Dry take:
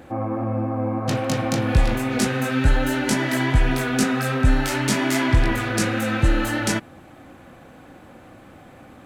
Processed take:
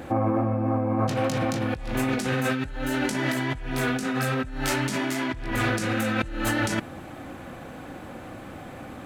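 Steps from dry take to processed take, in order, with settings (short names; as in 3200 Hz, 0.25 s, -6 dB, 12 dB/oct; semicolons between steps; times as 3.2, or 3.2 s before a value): negative-ratio compressor -27 dBFS, ratio -1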